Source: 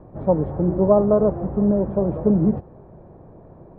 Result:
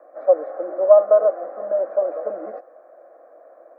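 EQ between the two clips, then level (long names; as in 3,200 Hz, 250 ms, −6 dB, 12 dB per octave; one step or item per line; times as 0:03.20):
Butterworth high-pass 440 Hz 36 dB per octave
phaser with its sweep stopped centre 610 Hz, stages 8
+6.0 dB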